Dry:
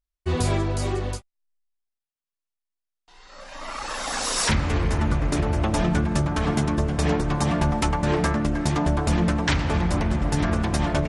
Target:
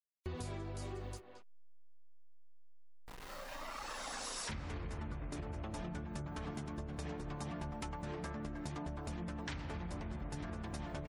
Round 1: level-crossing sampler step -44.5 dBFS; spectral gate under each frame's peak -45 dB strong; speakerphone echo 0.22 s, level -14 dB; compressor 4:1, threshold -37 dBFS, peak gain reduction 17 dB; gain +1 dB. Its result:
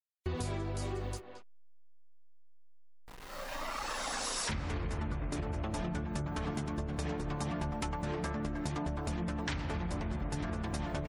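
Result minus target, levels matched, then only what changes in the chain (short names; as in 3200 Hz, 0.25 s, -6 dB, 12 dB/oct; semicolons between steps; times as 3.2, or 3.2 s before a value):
compressor: peak gain reduction -7 dB
change: compressor 4:1, threshold -46 dBFS, peak gain reduction 23.5 dB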